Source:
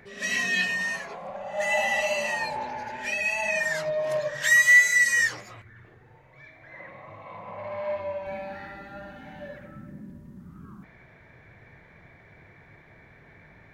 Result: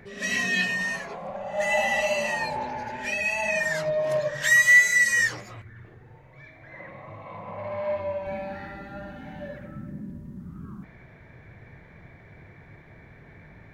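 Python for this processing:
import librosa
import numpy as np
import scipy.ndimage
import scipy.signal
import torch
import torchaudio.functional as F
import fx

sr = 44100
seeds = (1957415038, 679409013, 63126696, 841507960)

y = fx.low_shelf(x, sr, hz=410.0, db=6.5)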